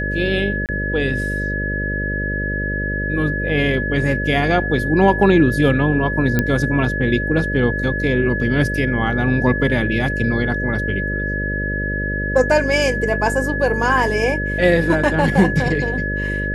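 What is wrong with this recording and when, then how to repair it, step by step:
mains buzz 50 Hz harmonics 12 −24 dBFS
whistle 1,700 Hz −23 dBFS
0:00.66–0:00.69: drop-out 28 ms
0:06.39: click −4 dBFS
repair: click removal
hum removal 50 Hz, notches 12
notch filter 1,700 Hz, Q 30
repair the gap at 0:00.66, 28 ms

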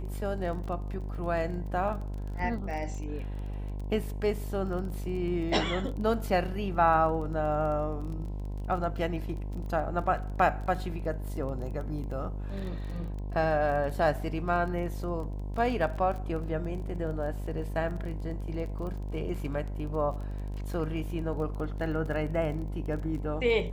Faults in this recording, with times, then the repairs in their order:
mains buzz 50 Hz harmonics 21 −35 dBFS
surface crackle 21 per second −37 dBFS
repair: click removal
hum removal 50 Hz, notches 21

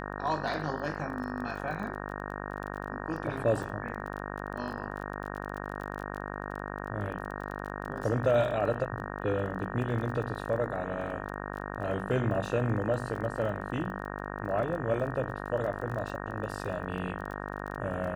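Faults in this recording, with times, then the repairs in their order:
mains buzz 50 Hz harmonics 37 −38 dBFS
surface crackle 25 per second −38 dBFS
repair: click removal
hum removal 50 Hz, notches 37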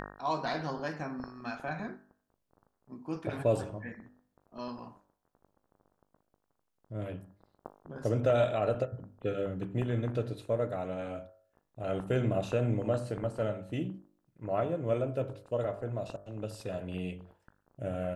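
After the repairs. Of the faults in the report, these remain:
none of them is left

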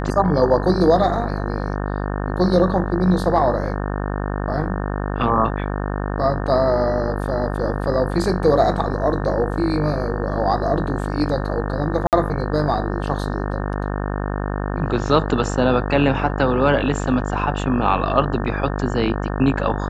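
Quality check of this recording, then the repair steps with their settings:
mains buzz 50 Hz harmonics 36 −24 dBFS
0:12.07–0:12.13: drop-out 58 ms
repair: hum removal 50 Hz, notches 36
repair the gap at 0:12.07, 58 ms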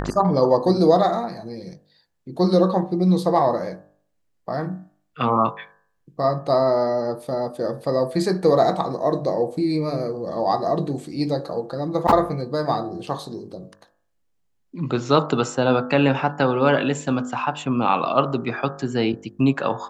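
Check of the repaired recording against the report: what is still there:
none of them is left

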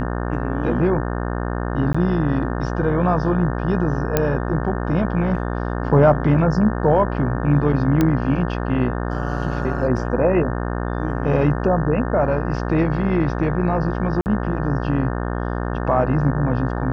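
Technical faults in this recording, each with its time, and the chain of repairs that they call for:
mains buzz 60 Hz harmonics 30 −24 dBFS
0:01.93–0:01.95: drop-out 15 ms
0:04.17: click −3 dBFS
0:08.01: click −6 dBFS
0:14.21–0:14.26: drop-out 49 ms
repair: click removal
hum removal 60 Hz, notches 30
repair the gap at 0:01.93, 15 ms
repair the gap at 0:14.21, 49 ms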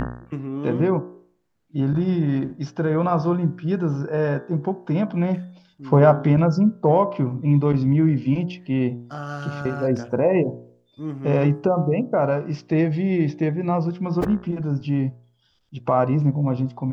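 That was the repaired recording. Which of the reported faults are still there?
none of them is left

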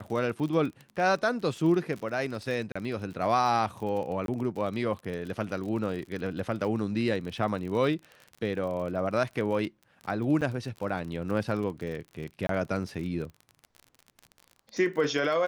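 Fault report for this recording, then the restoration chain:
surface crackle 37 per second −35 dBFS
0:02.72–0:02.75: drop-out 35 ms
0:04.26–0:04.28: drop-out 22 ms
0:10.41–0:10.42: drop-out 7.4 ms
0:12.47–0:12.49: drop-out 23 ms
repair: click removal
repair the gap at 0:02.72, 35 ms
repair the gap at 0:04.26, 22 ms
repair the gap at 0:10.41, 7.4 ms
repair the gap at 0:12.47, 23 ms

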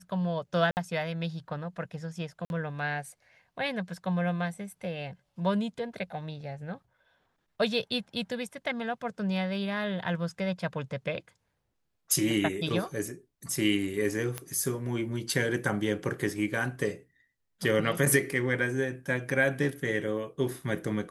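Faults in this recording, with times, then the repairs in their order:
0:00.71–0:00.77: drop-out 59 ms
0:02.45–0:02.50: drop-out 51 ms
0:14.38: click −17 dBFS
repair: click removal
repair the gap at 0:00.71, 59 ms
repair the gap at 0:02.45, 51 ms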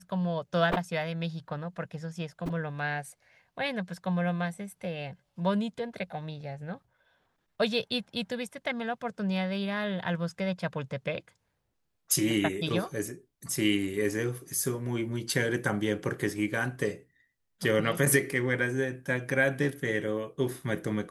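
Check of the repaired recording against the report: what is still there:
none of them is left

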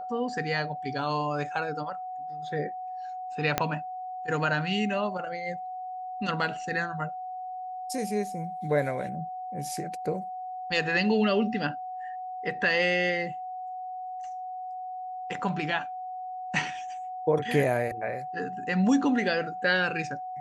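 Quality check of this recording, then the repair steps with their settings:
whistle 740 Hz −34 dBFS
0:03.58: click −8 dBFS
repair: click removal
notch filter 740 Hz, Q 30

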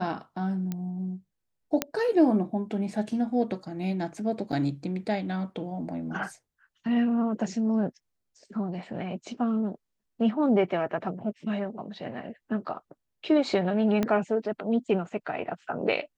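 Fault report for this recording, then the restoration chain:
0:00.72: click −19 dBFS
0:01.82: click −8 dBFS
0:04.52–0:04.53: drop-out 7.6 ms
0:14.03: click −13 dBFS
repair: click removal
repair the gap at 0:04.52, 7.6 ms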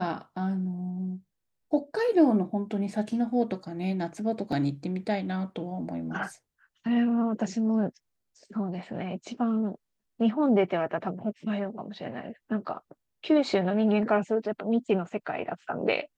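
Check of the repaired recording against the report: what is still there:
0:00.72: click
0:14.03: click

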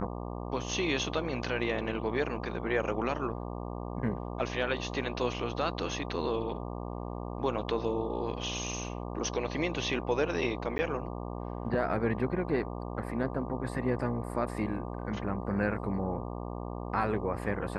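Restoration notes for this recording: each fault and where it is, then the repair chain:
mains buzz 60 Hz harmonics 20 −38 dBFS
0:10.78–0:10.79: drop-out 10 ms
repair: hum removal 60 Hz, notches 20
repair the gap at 0:10.78, 10 ms

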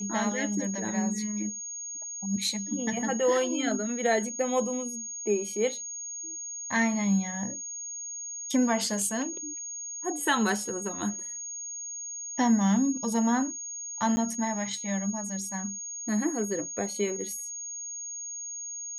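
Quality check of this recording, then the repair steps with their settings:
whistle 6,600 Hz −35 dBFS
0:14.16–0:14.17: drop-out 10 ms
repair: notch filter 6,600 Hz, Q 30
repair the gap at 0:14.16, 10 ms

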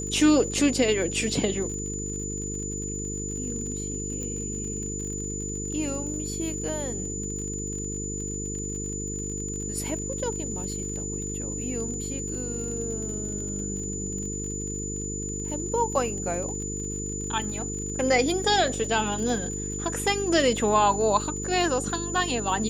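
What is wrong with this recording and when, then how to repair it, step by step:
mains buzz 50 Hz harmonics 9 −34 dBFS
surface crackle 42 per second −35 dBFS
whistle 7,000 Hz −33 dBFS
0:04.23: click −22 dBFS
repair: click removal
hum removal 50 Hz, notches 9
notch filter 7,000 Hz, Q 30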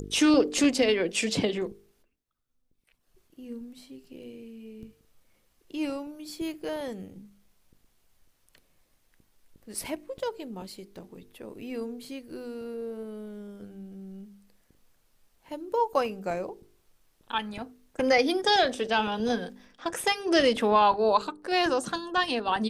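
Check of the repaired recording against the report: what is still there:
0:04.23: click

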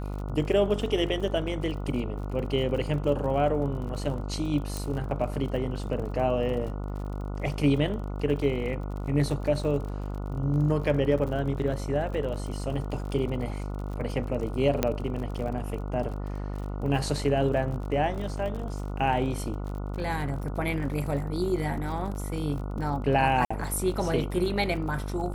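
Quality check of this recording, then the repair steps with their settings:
mains buzz 50 Hz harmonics 29 −33 dBFS
surface crackle 47 per second −36 dBFS
0:04.77: click
0:14.83: click −9 dBFS
0:23.45–0:23.50: drop-out 55 ms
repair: click removal
hum removal 50 Hz, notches 29
repair the gap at 0:23.45, 55 ms

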